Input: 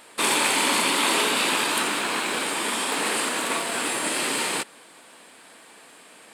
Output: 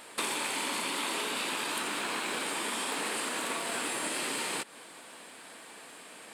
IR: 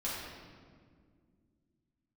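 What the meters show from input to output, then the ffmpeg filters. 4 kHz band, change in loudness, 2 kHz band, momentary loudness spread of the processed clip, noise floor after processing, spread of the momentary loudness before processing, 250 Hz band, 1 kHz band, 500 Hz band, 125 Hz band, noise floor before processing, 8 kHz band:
−9.5 dB, −9.5 dB, −9.5 dB, 16 LU, −50 dBFS, 5 LU, −9.5 dB, −9.5 dB, −9.0 dB, −9.0 dB, −50 dBFS, −9.0 dB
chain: -af "acompressor=threshold=-31dB:ratio=6"

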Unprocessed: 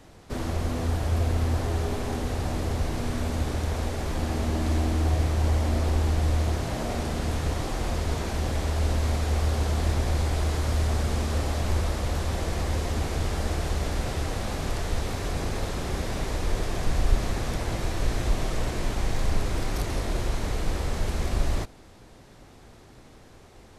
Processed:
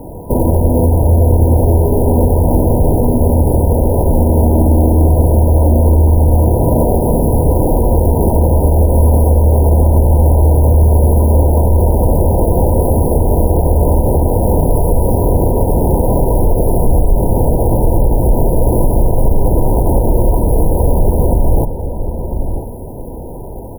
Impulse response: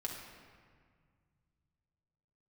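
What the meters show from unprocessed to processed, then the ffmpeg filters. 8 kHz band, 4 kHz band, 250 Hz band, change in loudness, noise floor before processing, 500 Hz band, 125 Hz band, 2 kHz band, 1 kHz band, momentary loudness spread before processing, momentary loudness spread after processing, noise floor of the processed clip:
+7.5 dB, below −40 dB, +17.0 dB, +15.5 dB, −50 dBFS, +18.5 dB, +16.0 dB, below −35 dB, +14.0 dB, 5 LU, 4 LU, −25 dBFS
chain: -filter_complex "[0:a]equalizer=frequency=500:width_type=o:width=0.33:gain=5,equalizer=frequency=800:width_type=o:width=0.33:gain=-5,equalizer=frequency=4000:width_type=o:width=0.33:gain=6,equalizer=frequency=6300:width_type=o:width=0.33:gain=9,asplit=2[link_01][link_02];[link_02]acompressor=threshold=-35dB:ratio=5,volume=1dB[link_03];[link_01][link_03]amix=inputs=2:normalize=0,acrusher=samples=11:mix=1:aa=0.000001:lfo=1:lforange=11:lforate=0.52,asplit=2[link_04][link_05];[link_05]adelay=994,lowpass=frequency=1200:poles=1,volume=-10dB,asplit=2[link_06][link_07];[link_07]adelay=994,lowpass=frequency=1200:poles=1,volume=0.26,asplit=2[link_08][link_09];[link_09]adelay=994,lowpass=frequency=1200:poles=1,volume=0.26[link_10];[link_06][link_08][link_10]amix=inputs=3:normalize=0[link_11];[link_04][link_11]amix=inputs=2:normalize=0,afftfilt=real='re*(1-between(b*sr/4096,1000,9600))':imag='im*(1-between(b*sr/4096,1000,9600))':win_size=4096:overlap=0.75,alimiter=level_in=16dB:limit=-1dB:release=50:level=0:latency=1,volume=-1dB"

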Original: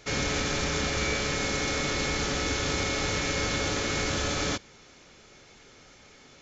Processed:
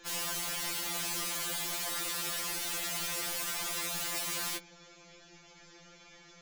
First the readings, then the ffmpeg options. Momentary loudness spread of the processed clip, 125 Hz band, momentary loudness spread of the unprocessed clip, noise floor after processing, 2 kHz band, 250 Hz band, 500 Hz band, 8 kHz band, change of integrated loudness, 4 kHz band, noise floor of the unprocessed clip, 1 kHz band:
0 LU, −18.5 dB, 1 LU, −57 dBFS, −9.5 dB, −15.5 dB, −14.5 dB, can't be measured, −5.0 dB, −5.5 dB, −54 dBFS, −8.0 dB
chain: -af "aeval=exprs='(mod(26.6*val(0)+1,2)-1)/26.6':channel_layout=same,afftfilt=real='re*2.83*eq(mod(b,8),0)':imag='im*2.83*eq(mod(b,8),0)':win_size=2048:overlap=0.75"

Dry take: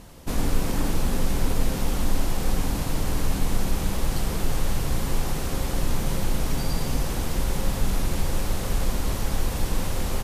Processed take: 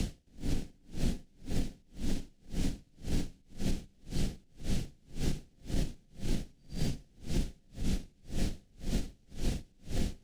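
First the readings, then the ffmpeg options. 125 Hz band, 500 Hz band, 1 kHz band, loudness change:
−10.0 dB, −13.5 dB, −21.0 dB, −11.5 dB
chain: -filter_complex "[0:a]lowpass=7100,equalizer=frequency=1100:width_type=o:width=1.5:gain=-8.5,bandreject=frequency=1800:width=6.2,areverse,acompressor=mode=upward:threshold=-24dB:ratio=2.5,areverse,alimiter=limit=-20.5dB:level=0:latency=1:release=142,acrossover=split=140|300[link_01][link_02][link_03];[link_01]acompressor=threshold=-38dB:ratio=4[link_04];[link_02]acompressor=threshold=-43dB:ratio=4[link_05];[link_03]acompressor=threshold=-50dB:ratio=4[link_06];[link_04][link_05][link_06]amix=inputs=3:normalize=0,acrossover=split=440|1200[link_07][link_08][link_09];[link_08]acrusher=samples=36:mix=1:aa=0.000001[link_10];[link_07][link_10][link_09]amix=inputs=3:normalize=0,aeval=exprs='val(0)*pow(10,-37*(0.5-0.5*cos(2*PI*1.9*n/s))/20)':channel_layout=same,volume=10dB"

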